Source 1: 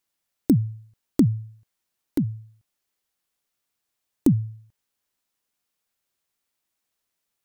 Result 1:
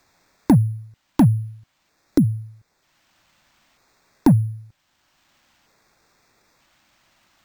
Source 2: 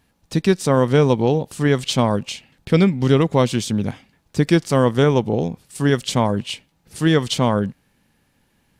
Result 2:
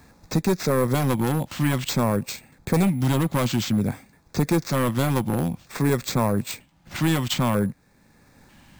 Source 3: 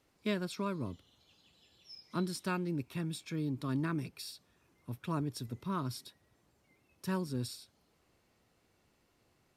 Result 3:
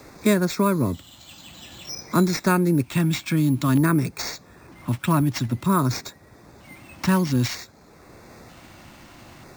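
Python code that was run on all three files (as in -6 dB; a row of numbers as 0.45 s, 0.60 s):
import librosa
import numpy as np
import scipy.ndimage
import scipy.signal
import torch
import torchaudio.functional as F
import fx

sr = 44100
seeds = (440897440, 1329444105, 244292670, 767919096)

y = np.repeat(x[::4], 4)[:len(x)]
y = np.clip(y, -10.0 ** (-15.0 / 20.0), 10.0 ** (-15.0 / 20.0))
y = fx.filter_lfo_notch(y, sr, shape='square', hz=0.53, low_hz=440.0, high_hz=3000.0, q=2.2)
y = fx.band_squash(y, sr, depth_pct=40)
y = y * 10.0 ** (-24 / 20.0) / np.sqrt(np.mean(np.square(y)))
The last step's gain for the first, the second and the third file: +8.5 dB, -0.5 dB, +16.0 dB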